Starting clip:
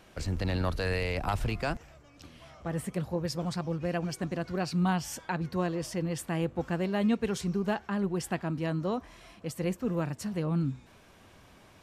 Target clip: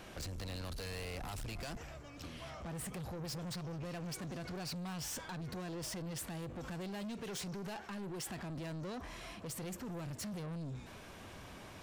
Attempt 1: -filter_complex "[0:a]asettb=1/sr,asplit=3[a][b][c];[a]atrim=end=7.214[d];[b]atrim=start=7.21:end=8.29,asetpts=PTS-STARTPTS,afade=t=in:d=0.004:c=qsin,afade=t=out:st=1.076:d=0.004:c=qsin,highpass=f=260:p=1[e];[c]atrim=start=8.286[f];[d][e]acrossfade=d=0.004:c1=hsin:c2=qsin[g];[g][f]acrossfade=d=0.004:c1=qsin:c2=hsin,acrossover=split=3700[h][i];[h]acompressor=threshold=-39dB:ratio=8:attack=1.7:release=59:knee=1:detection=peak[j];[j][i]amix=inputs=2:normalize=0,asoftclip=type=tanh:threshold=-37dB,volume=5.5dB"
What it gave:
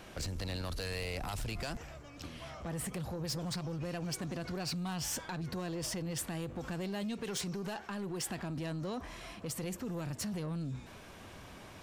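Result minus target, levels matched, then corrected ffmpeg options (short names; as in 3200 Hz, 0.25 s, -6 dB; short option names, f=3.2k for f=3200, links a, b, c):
soft clip: distortion -8 dB
-filter_complex "[0:a]asettb=1/sr,asplit=3[a][b][c];[a]atrim=end=7.214[d];[b]atrim=start=7.21:end=8.29,asetpts=PTS-STARTPTS,afade=t=in:d=0.004:c=qsin,afade=t=out:st=1.076:d=0.004:c=qsin,highpass=f=260:p=1[e];[c]atrim=start=8.286[f];[d][e]acrossfade=d=0.004:c1=hsin:c2=qsin[g];[g][f]acrossfade=d=0.004:c1=qsin:c2=hsin,acrossover=split=3700[h][i];[h]acompressor=threshold=-39dB:ratio=8:attack=1.7:release=59:knee=1:detection=peak[j];[j][i]amix=inputs=2:normalize=0,asoftclip=type=tanh:threshold=-45.5dB,volume=5.5dB"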